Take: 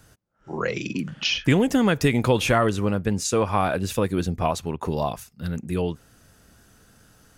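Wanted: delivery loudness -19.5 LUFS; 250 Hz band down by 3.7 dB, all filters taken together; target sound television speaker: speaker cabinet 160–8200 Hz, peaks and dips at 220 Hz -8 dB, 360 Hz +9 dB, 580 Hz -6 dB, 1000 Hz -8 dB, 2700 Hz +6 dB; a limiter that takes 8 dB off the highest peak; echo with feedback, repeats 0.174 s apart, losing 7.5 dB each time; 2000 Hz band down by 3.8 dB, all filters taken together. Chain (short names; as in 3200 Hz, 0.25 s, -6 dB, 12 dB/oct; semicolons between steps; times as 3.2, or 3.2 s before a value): bell 250 Hz -4.5 dB; bell 2000 Hz -8.5 dB; limiter -17.5 dBFS; speaker cabinet 160–8200 Hz, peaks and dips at 220 Hz -8 dB, 360 Hz +9 dB, 580 Hz -6 dB, 1000 Hz -8 dB, 2700 Hz +6 dB; feedback echo 0.174 s, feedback 42%, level -7.5 dB; gain +9 dB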